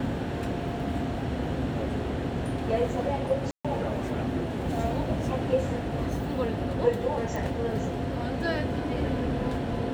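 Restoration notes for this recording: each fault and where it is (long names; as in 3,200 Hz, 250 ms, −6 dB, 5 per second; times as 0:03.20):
0:03.51–0:03.65: drop-out 136 ms
0:07.36: click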